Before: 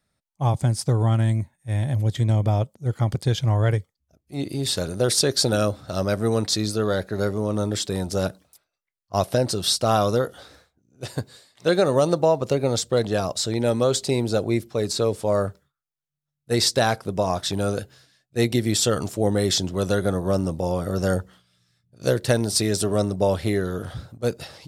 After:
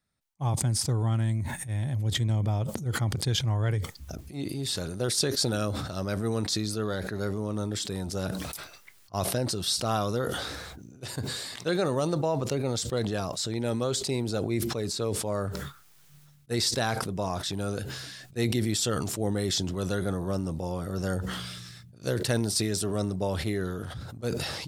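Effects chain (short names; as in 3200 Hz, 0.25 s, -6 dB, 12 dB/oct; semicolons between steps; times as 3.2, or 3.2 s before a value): bell 580 Hz -4.5 dB 0.79 oct; sustainer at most 30 dB/s; gain -6.5 dB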